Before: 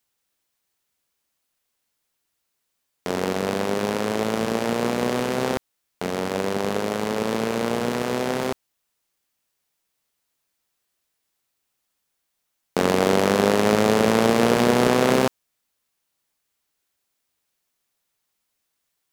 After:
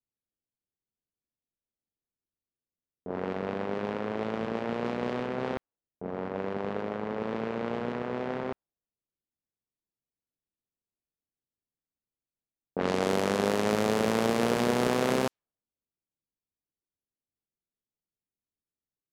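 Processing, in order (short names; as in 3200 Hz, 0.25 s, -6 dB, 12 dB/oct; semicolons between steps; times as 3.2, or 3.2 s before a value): low-pass opened by the level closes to 360 Hz, open at -13.5 dBFS; gain -8 dB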